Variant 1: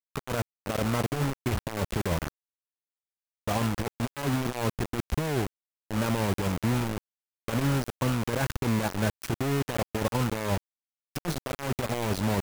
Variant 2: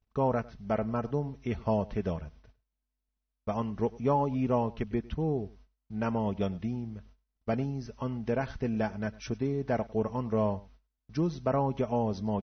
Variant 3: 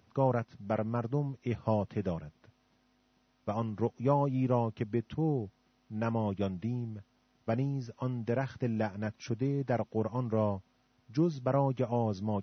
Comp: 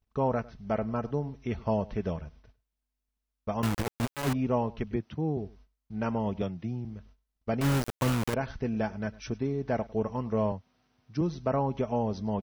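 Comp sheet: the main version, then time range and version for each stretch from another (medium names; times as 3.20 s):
2
3.63–4.33 s: from 1
4.96–5.37 s: from 3
6.42–6.85 s: from 3
7.61–8.34 s: from 1
10.52–11.21 s: from 3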